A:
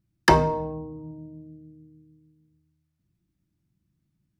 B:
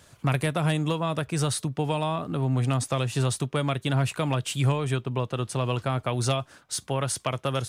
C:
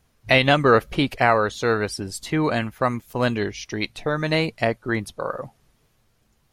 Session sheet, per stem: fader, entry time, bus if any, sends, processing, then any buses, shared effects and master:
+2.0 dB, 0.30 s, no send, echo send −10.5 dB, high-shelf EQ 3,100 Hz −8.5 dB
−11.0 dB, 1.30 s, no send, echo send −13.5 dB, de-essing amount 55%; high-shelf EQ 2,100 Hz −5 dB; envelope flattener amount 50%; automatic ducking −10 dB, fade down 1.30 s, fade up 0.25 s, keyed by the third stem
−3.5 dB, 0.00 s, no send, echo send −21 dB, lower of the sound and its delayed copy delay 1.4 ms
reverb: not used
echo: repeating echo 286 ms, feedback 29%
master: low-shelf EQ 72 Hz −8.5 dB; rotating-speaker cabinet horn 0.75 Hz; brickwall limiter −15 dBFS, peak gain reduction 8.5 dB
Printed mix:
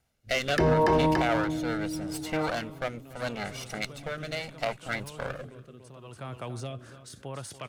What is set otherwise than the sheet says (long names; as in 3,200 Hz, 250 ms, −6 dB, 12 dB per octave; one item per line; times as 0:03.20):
stem A +2.0 dB → +12.0 dB
stem B: entry 1.30 s → 0.35 s